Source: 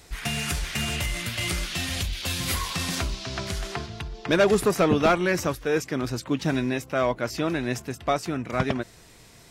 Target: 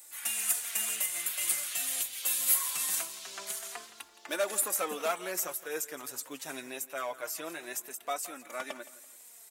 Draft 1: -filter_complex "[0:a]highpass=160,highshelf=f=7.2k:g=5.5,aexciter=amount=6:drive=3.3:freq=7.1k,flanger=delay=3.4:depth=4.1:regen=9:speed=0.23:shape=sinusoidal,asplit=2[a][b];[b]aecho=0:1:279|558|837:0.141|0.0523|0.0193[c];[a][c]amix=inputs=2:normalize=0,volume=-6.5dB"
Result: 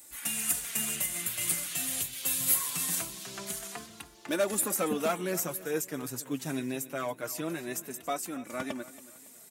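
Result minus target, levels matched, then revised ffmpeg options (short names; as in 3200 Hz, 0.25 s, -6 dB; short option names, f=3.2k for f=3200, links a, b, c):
125 Hz band +18.5 dB; echo 0.111 s late
-filter_complex "[0:a]highpass=570,highshelf=f=7.2k:g=5.5,aexciter=amount=6:drive=3.3:freq=7.1k,flanger=delay=3.4:depth=4.1:regen=9:speed=0.23:shape=sinusoidal,asplit=2[a][b];[b]aecho=0:1:168|336|504:0.141|0.0523|0.0193[c];[a][c]amix=inputs=2:normalize=0,volume=-6.5dB"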